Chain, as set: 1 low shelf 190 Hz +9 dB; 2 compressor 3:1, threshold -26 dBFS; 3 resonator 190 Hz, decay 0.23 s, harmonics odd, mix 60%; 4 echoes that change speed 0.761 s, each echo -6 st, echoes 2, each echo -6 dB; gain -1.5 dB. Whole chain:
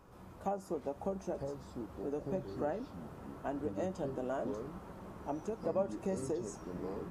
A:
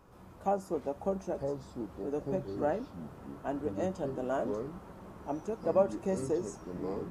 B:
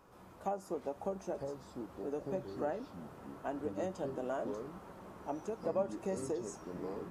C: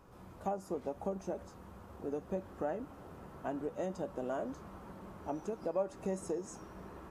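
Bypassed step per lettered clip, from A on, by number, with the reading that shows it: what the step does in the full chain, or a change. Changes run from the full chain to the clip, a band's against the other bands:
2, mean gain reduction 2.0 dB; 1, 125 Hz band -4.0 dB; 4, 125 Hz band -3.0 dB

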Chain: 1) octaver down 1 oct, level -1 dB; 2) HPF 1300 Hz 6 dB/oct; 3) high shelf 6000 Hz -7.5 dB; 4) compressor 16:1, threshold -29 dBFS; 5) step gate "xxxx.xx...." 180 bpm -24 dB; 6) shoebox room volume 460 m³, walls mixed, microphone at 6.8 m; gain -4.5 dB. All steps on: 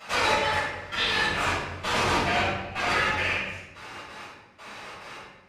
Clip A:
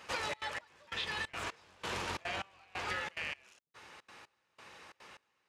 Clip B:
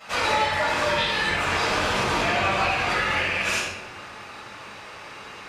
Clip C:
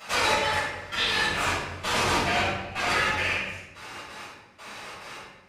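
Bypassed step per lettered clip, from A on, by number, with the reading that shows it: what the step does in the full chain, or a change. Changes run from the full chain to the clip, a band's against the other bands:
6, echo-to-direct 11.0 dB to none; 5, 8 kHz band +1.5 dB; 3, 8 kHz band +4.0 dB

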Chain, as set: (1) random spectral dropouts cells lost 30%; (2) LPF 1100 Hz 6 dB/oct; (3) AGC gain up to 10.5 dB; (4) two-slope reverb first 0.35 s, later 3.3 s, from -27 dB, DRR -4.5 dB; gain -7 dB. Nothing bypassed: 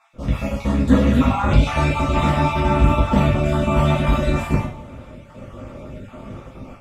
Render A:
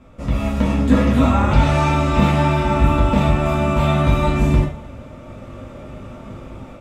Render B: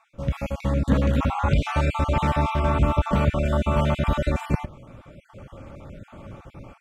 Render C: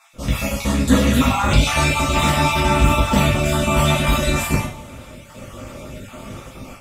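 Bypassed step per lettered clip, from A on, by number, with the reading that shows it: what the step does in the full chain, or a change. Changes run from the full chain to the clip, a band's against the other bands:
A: 1, loudness change +1.5 LU; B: 4, crest factor change -2.0 dB; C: 2, 8 kHz band +14.5 dB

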